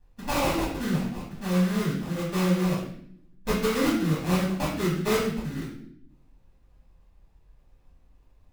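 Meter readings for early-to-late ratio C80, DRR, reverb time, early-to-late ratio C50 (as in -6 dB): 7.0 dB, -7.0 dB, 0.65 s, 3.5 dB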